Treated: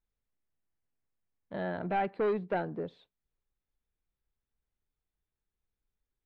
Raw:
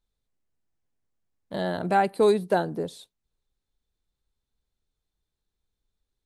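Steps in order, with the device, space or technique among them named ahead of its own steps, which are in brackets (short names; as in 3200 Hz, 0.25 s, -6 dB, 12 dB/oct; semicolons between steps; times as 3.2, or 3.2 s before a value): overdriven synthesiser ladder filter (soft clip -18.5 dBFS, distortion -13 dB; ladder low-pass 3000 Hz, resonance 25%)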